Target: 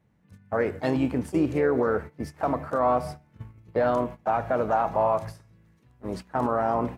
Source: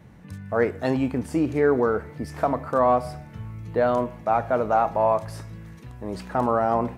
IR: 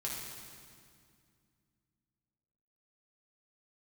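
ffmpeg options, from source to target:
-filter_complex "[0:a]agate=range=-17dB:threshold=-33dB:ratio=16:detection=peak,alimiter=limit=-13.5dB:level=0:latency=1:release=45,asplit=2[a][b];[b]asetrate=52444,aresample=44100,atempo=0.840896,volume=-11dB[c];[a][c]amix=inputs=2:normalize=0,volume=-1dB"

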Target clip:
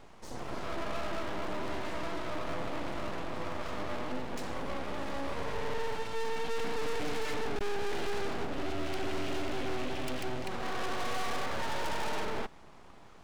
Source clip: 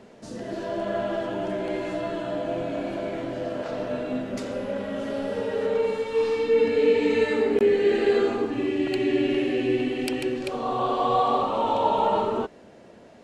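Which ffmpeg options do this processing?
-af "aeval=exprs='(tanh(28.2*val(0)+0.55)-tanh(0.55))/28.2':c=same,aeval=exprs='abs(val(0))':c=same"

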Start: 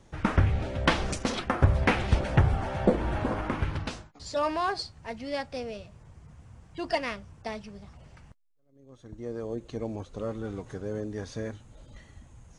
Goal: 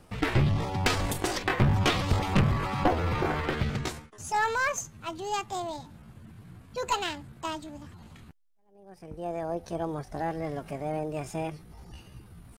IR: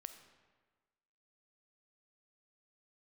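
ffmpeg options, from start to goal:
-af "asetrate=64194,aresample=44100,atempo=0.686977,aeval=exprs='0.316*(cos(1*acos(clip(val(0)/0.316,-1,1)))-cos(1*PI/2))+0.126*(cos(2*acos(clip(val(0)/0.316,-1,1)))-cos(2*PI/2))+0.0631*(cos(5*acos(clip(val(0)/0.316,-1,1)))-cos(5*PI/2))':c=same,volume=-4dB"

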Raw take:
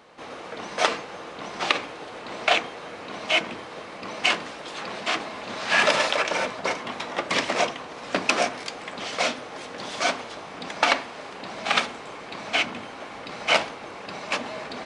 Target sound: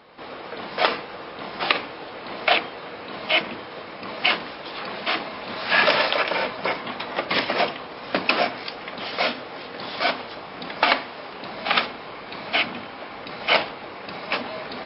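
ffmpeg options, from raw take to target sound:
-af "volume=2dB" -ar 12000 -c:a libmp3lame -b:a 24k

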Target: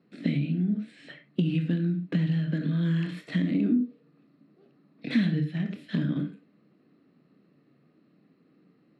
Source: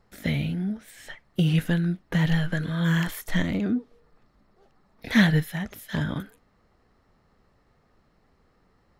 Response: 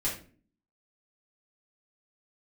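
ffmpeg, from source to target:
-filter_complex "[0:a]asplit=2[a][b];[1:a]atrim=start_sample=2205,atrim=end_sample=4410,adelay=22[c];[b][c]afir=irnorm=-1:irlink=0,volume=-12dB[d];[a][d]amix=inputs=2:normalize=0,adynamicsmooth=sensitivity=6:basefreq=5k,highpass=f=140:w=0.5412,highpass=f=140:w=1.3066,equalizer=f=150:t=q:w=4:g=7,equalizer=f=300:t=q:w=4:g=7,equalizer=f=880:t=q:w=4:g=-10,equalizer=f=2.6k:t=q:w=4:g=9,equalizer=f=4.1k:t=q:w=4:g=8,equalizer=f=6.3k:t=q:w=4:g=-9,lowpass=f=9.5k:w=0.5412,lowpass=f=9.5k:w=1.3066,acompressor=threshold=-25dB:ratio=4,equalizer=f=250:t=o:w=1.6:g=11,volume=-6.5dB"

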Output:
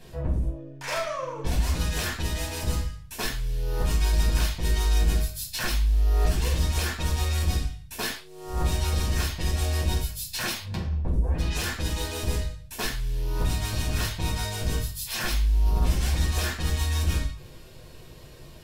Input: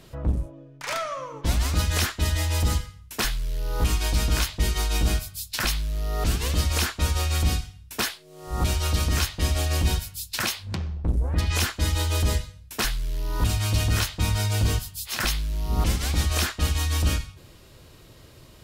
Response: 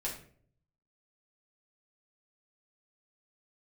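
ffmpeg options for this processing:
-filter_complex "[0:a]alimiter=limit=-17.5dB:level=0:latency=1:release=141,asoftclip=type=tanh:threshold=-22dB[a];[1:a]atrim=start_sample=2205,afade=t=out:st=0.18:d=0.01,atrim=end_sample=8379[b];[a][b]afir=irnorm=-1:irlink=0"

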